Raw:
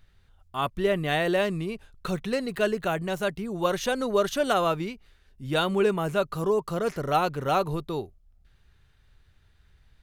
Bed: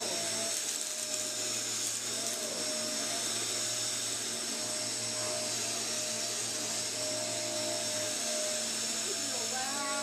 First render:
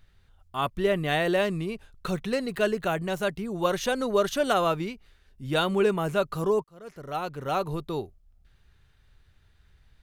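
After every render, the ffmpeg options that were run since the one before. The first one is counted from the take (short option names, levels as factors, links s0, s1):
-filter_complex "[0:a]asplit=2[s0][s1];[s0]atrim=end=6.64,asetpts=PTS-STARTPTS,afade=t=out:st=6.636:d=0.004:c=hsin[s2];[s1]atrim=start=6.64,asetpts=PTS-STARTPTS,afade=t=in:d=1.34[s3];[s2][s3]concat=n=2:v=0:a=1"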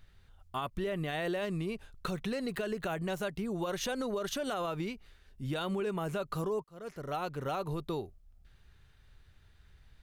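-af "alimiter=limit=0.0841:level=0:latency=1:release=79,acompressor=threshold=0.0224:ratio=2.5"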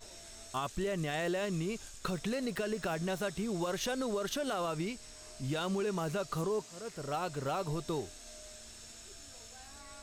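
-filter_complex "[1:a]volume=0.133[s0];[0:a][s0]amix=inputs=2:normalize=0"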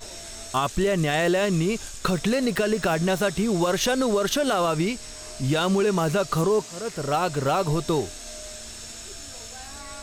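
-af "volume=3.98"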